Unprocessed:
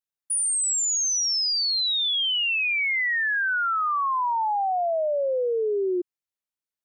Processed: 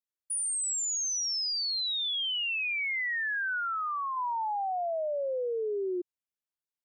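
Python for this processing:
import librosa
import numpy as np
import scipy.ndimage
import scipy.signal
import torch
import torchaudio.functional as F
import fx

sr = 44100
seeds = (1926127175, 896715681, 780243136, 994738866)

y = fx.lowpass(x, sr, hz=fx.line((3.6, 2400.0), (4.15, 1200.0)), slope=12, at=(3.6, 4.15), fade=0.02)
y = y * 10.0 ** (-7.0 / 20.0)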